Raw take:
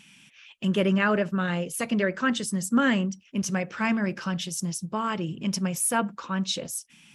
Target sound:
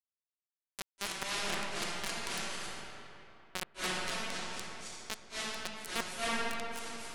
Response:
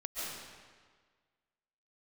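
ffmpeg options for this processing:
-filter_complex "[0:a]areverse,acompressor=threshold=0.01:ratio=4,areverse,acrusher=bits=4:mix=0:aa=0.000001[s0];[1:a]atrim=start_sample=2205,asetrate=22932,aresample=44100[s1];[s0][s1]afir=irnorm=-1:irlink=0,volume=1.78"

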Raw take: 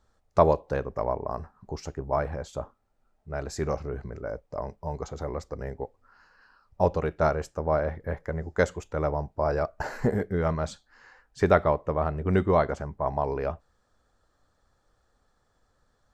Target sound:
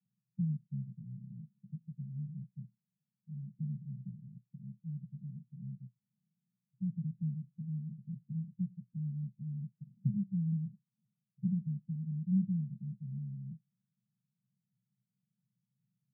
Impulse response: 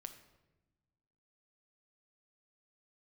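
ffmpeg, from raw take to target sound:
-af "asuperpass=centerf=160:order=12:qfactor=1.8,volume=0.891"

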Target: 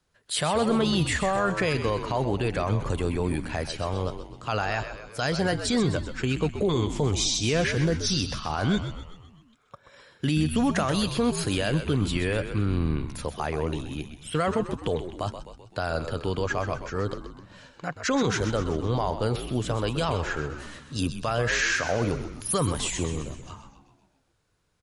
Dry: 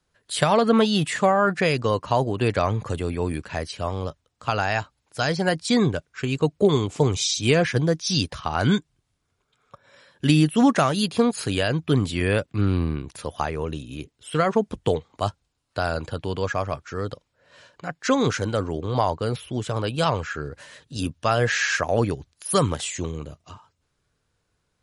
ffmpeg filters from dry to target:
-filter_complex "[0:a]alimiter=limit=0.158:level=0:latency=1:release=33,asplit=7[s0][s1][s2][s3][s4][s5][s6];[s1]adelay=128,afreqshift=-72,volume=0.335[s7];[s2]adelay=256,afreqshift=-144,volume=0.18[s8];[s3]adelay=384,afreqshift=-216,volume=0.0977[s9];[s4]adelay=512,afreqshift=-288,volume=0.0525[s10];[s5]adelay=640,afreqshift=-360,volume=0.0285[s11];[s6]adelay=768,afreqshift=-432,volume=0.0153[s12];[s0][s7][s8][s9][s10][s11][s12]amix=inputs=7:normalize=0"

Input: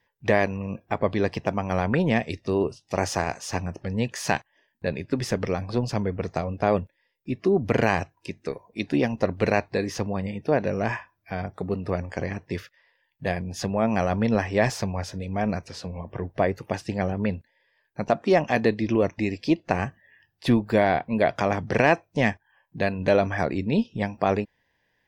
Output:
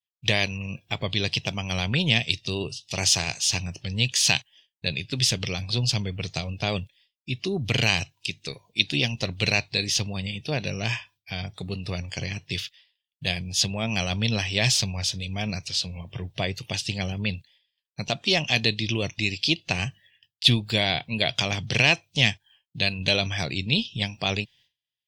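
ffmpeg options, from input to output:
-af "highshelf=f=2400:t=q:w=3:g=9.5,agate=range=0.0224:threshold=0.00355:ratio=3:detection=peak,equalizer=f=125:t=o:w=1:g=9,equalizer=f=250:t=o:w=1:g=-4,equalizer=f=500:t=o:w=1:g=-4,equalizer=f=1000:t=o:w=1:g=-3,equalizer=f=2000:t=o:w=1:g=8,equalizer=f=4000:t=o:w=1:g=5,equalizer=f=8000:t=o:w=1:g=5,volume=0.596"

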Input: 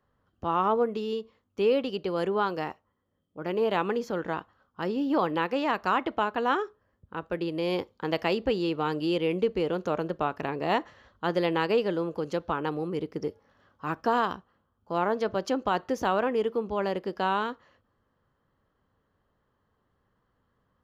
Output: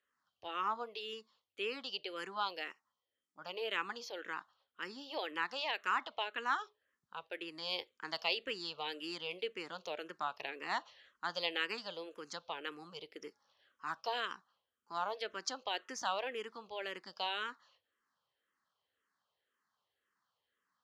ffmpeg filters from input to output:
-filter_complex "[0:a]bandpass=f=4500:t=q:w=0.8:csg=0,asplit=2[s0][s1];[s1]afreqshift=-1.9[s2];[s0][s2]amix=inputs=2:normalize=1,volume=1.58"

